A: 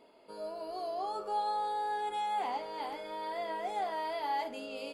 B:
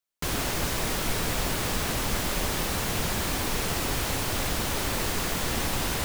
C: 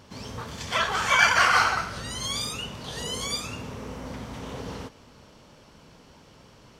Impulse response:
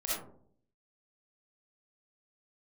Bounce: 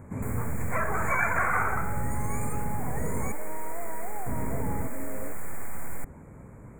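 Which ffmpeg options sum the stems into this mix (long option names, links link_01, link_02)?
-filter_complex "[0:a]acompressor=threshold=-41dB:ratio=6,adelay=400,volume=2.5dB[link_01];[1:a]highpass=610,aeval=exprs='max(val(0),0)':channel_layout=same,volume=-6.5dB,asplit=2[link_02][link_03];[link_03]volume=-19dB[link_04];[2:a]volume=-1.5dB,asplit=3[link_05][link_06][link_07];[link_05]atrim=end=3.32,asetpts=PTS-STARTPTS,afade=type=out:start_time=3.316:duration=0.004:curve=hsin[link_08];[link_06]atrim=start=3.32:end=4.26,asetpts=PTS-STARTPTS,volume=0[link_09];[link_07]atrim=start=4.26,asetpts=PTS-STARTPTS,afade=type=in:duration=0.004:curve=hsin[link_10];[link_08][link_09][link_10]concat=n=3:v=0:a=1[link_11];[3:a]atrim=start_sample=2205[link_12];[link_04][link_12]afir=irnorm=-1:irlink=0[link_13];[link_01][link_02][link_11][link_13]amix=inputs=4:normalize=0,asuperstop=centerf=4100:order=20:qfactor=0.9,lowshelf=frequency=370:gain=12,acompressor=threshold=-24dB:ratio=2.5"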